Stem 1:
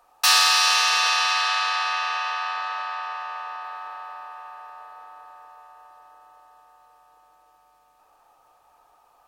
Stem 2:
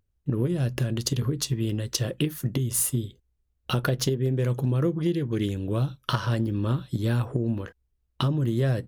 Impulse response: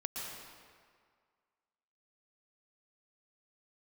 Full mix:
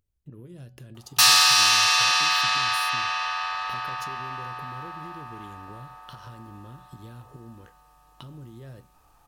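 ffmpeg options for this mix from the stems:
-filter_complex "[0:a]asubboost=boost=10:cutoff=180,acontrast=33,adelay=950,volume=0.531[s0];[1:a]alimiter=limit=0.126:level=0:latency=1:release=151,acompressor=threshold=0.01:ratio=3,volume=0.562[s1];[s0][s1]amix=inputs=2:normalize=0,highshelf=f=4600:g=5,bandreject=f=187.2:t=h:w=4,bandreject=f=374.4:t=h:w=4,bandreject=f=561.6:t=h:w=4,bandreject=f=748.8:t=h:w=4,bandreject=f=936:t=h:w=4,bandreject=f=1123.2:t=h:w=4,bandreject=f=1310.4:t=h:w=4,bandreject=f=1497.6:t=h:w=4,bandreject=f=1684.8:t=h:w=4,bandreject=f=1872:t=h:w=4,bandreject=f=2059.2:t=h:w=4,bandreject=f=2246.4:t=h:w=4,bandreject=f=2433.6:t=h:w=4,bandreject=f=2620.8:t=h:w=4,bandreject=f=2808:t=h:w=4,bandreject=f=2995.2:t=h:w=4,bandreject=f=3182.4:t=h:w=4,bandreject=f=3369.6:t=h:w=4,bandreject=f=3556.8:t=h:w=4,bandreject=f=3744:t=h:w=4,bandreject=f=3931.2:t=h:w=4,bandreject=f=4118.4:t=h:w=4,bandreject=f=4305.6:t=h:w=4,bandreject=f=4492.8:t=h:w=4,bandreject=f=4680:t=h:w=4,bandreject=f=4867.2:t=h:w=4,bandreject=f=5054.4:t=h:w=4"

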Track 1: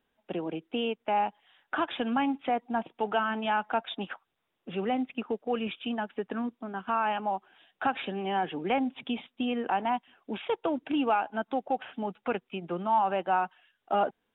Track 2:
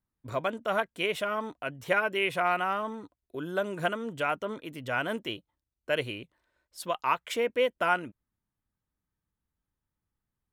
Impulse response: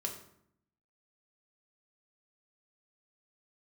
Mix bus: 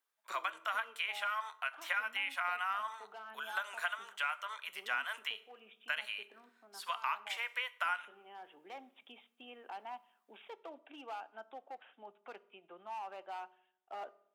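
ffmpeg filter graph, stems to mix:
-filter_complex "[0:a]asoftclip=type=hard:threshold=0.0794,volume=0.133,asplit=2[s0][s1];[s1]volume=0.282[s2];[1:a]highpass=f=1000:w=0.5412,highpass=f=1000:w=1.3066,acompressor=threshold=0.0141:ratio=6,volume=1.26,asplit=3[s3][s4][s5];[s4]volume=0.398[s6];[s5]apad=whole_len=632416[s7];[s0][s7]sidechaincompress=threshold=0.00794:ratio=8:attack=11:release=1330[s8];[2:a]atrim=start_sample=2205[s9];[s2][s6]amix=inputs=2:normalize=0[s10];[s10][s9]afir=irnorm=-1:irlink=0[s11];[s8][s3][s11]amix=inputs=3:normalize=0,highpass=530,acrossover=split=3400[s12][s13];[s13]acompressor=threshold=0.00355:ratio=4:attack=1:release=60[s14];[s12][s14]amix=inputs=2:normalize=0"

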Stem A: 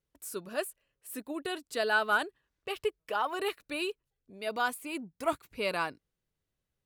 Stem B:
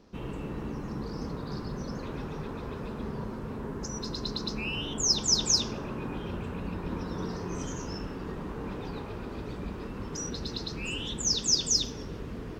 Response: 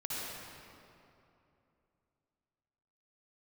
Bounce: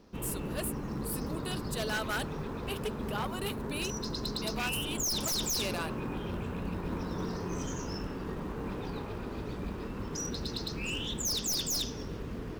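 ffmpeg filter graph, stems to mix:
-filter_complex "[0:a]aexciter=amount=2.3:drive=4.4:freq=2900,volume=0.531[s0];[1:a]aeval=exprs='(tanh(12.6*val(0)+0.3)-tanh(0.3))/12.6':c=same,volume=1.06[s1];[s0][s1]amix=inputs=2:normalize=0,aeval=exprs='0.0473*(abs(mod(val(0)/0.0473+3,4)-2)-1)':c=same,acrusher=bits=8:mode=log:mix=0:aa=0.000001"

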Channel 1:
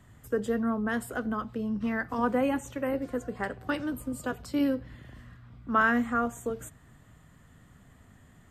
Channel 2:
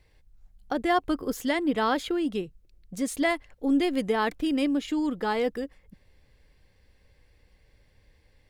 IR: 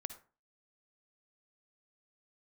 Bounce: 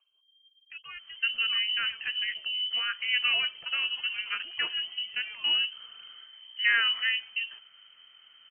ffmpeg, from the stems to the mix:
-filter_complex "[0:a]adelay=900,volume=0.944[s0];[1:a]aphaser=in_gain=1:out_gain=1:delay=4.6:decay=0.59:speed=0.24:type=triangular,volume=0.112[s1];[s0][s1]amix=inputs=2:normalize=0,lowpass=f=2700:t=q:w=0.5098,lowpass=f=2700:t=q:w=0.6013,lowpass=f=2700:t=q:w=0.9,lowpass=f=2700:t=q:w=2.563,afreqshift=-3200"

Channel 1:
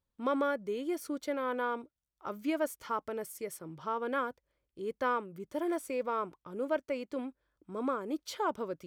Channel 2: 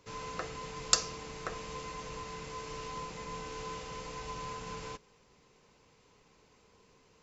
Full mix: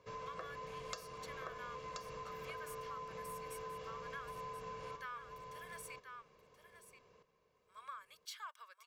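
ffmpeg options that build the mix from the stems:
-filter_complex "[0:a]highpass=f=1300:w=0.5412,highpass=f=1300:w=1.3066,volume=0.562,asplit=3[s0][s1][s2];[s0]atrim=end=5.96,asetpts=PTS-STARTPTS,afade=t=out:st=5.956:d=0.004:c=hsin[s3];[s1]atrim=start=5.96:end=7.56,asetpts=PTS-STARTPTS,volume=0[s4];[s2]atrim=start=7.56,asetpts=PTS-STARTPTS,afade=t=in:d=0.004:c=hsin[s5];[s3][s4][s5]concat=n=3:v=0:a=1,asplit=2[s6][s7];[s7]volume=0.266[s8];[1:a]lowpass=f=1600:p=1,lowshelf=f=100:g=-12,volume=0.891,asplit=2[s9][s10];[s10]volume=0.335[s11];[s8][s11]amix=inputs=2:normalize=0,aecho=0:1:1029:1[s12];[s6][s9][s12]amix=inputs=3:normalize=0,aecho=1:1:1.8:0.57,acompressor=threshold=0.00631:ratio=4"

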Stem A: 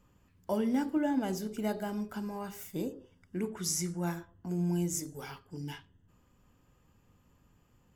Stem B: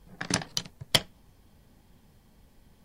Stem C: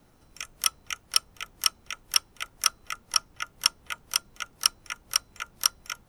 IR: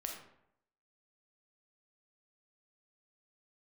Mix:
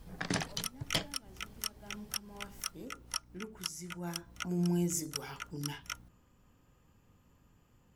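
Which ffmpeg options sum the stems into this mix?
-filter_complex "[0:a]afade=t=in:st=1.77:d=0.26:silence=0.266073,afade=t=in:st=3.91:d=0.69:silence=0.298538,asplit=2[s0][s1];[1:a]alimiter=limit=0.119:level=0:latency=1:release=19,volume=1.26[s2];[2:a]aeval=exprs='val(0)+0.00316*(sin(2*PI*60*n/s)+sin(2*PI*2*60*n/s)/2+sin(2*PI*3*60*n/s)/3+sin(2*PI*4*60*n/s)/4+sin(2*PI*5*60*n/s)/5)':c=same,volume=0.531[s3];[s1]apad=whole_len=268301[s4];[s3][s4]sidechaincompress=threshold=0.00282:ratio=8:attack=50:release=174[s5];[s0][s2][s5]amix=inputs=3:normalize=0,alimiter=limit=0.106:level=0:latency=1:release=204"

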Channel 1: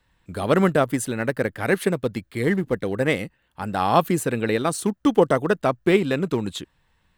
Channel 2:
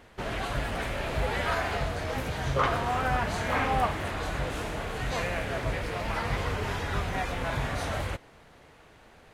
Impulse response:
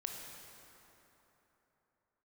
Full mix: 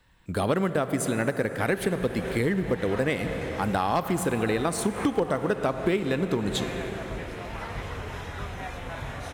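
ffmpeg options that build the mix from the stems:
-filter_complex "[0:a]aeval=exprs='0.473*(abs(mod(val(0)/0.473+3,4)-2)-1)':c=same,volume=1.06,asplit=2[s0][s1];[s1]volume=0.668[s2];[1:a]bandreject=f=4600:w=11,adelay=1450,volume=0.376,asplit=2[s3][s4];[s4]volume=0.631[s5];[2:a]atrim=start_sample=2205[s6];[s2][s5]amix=inputs=2:normalize=0[s7];[s7][s6]afir=irnorm=-1:irlink=0[s8];[s0][s3][s8]amix=inputs=3:normalize=0,acompressor=threshold=0.0794:ratio=6"

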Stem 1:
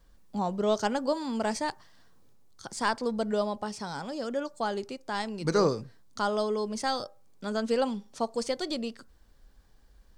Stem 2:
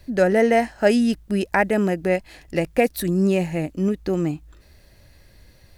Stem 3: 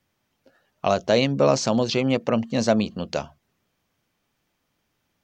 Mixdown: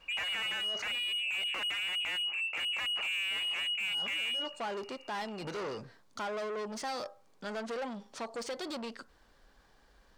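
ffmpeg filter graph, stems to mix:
-filter_complex "[0:a]acompressor=threshold=0.0398:ratio=6,asoftclip=type=tanh:threshold=0.0126,volume=0.75,asplit=3[s0][s1][s2];[s0]atrim=end=0.96,asetpts=PTS-STARTPTS,afade=t=out:st=0.956:d=0.004:c=hsin[s3];[s1]atrim=start=0.96:end=3.8,asetpts=PTS-STARTPTS,volume=0[s4];[s2]atrim=start=3.8,asetpts=PTS-STARTPTS,afade=t=in:d=0.004:c=hsin[s5];[s3][s4][s5]concat=n=3:v=0:a=1[s6];[1:a]aeval=exprs='0.596*(cos(1*acos(clip(val(0)/0.596,-1,1)))-cos(1*PI/2))+0.168*(cos(3*acos(clip(val(0)/0.596,-1,1)))-cos(3*PI/2))+0.0119*(cos(5*acos(clip(val(0)/0.596,-1,1)))-cos(5*PI/2))+0.266*(cos(6*acos(clip(val(0)/0.596,-1,1)))-cos(6*PI/2))':c=same,volume=0.708[s7];[2:a]bandpass=f=190:t=q:w=1.5:csg=0,adelay=50,volume=0.299[s8];[s7][s8]amix=inputs=2:normalize=0,lowpass=f=2500:t=q:w=0.5098,lowpass=f=2500:t=q:w=0.6013,lowpass=f=2500:t=q:w=0.9,lowpass=f=2500:t=q:w=2.563,afreqshift=-2900,acompressor=threshold=0.112:ratio=6,volume=1[s9];[s6][s9]amix=inputs=2:normalize=0,asplit=2[s10][s11];[s11]highpass=f=720:p=1,volume=6.31,asoftclip=type=tanh:threshold=0.133[s12];[s10][s12]amix=inputs=2:normalize=0,lowpass=f=2500:p=1,volume=0.501,alimiter=level_in=1.88:limit=0.0631:level=0:latency=1:release=12,volume=0.531"

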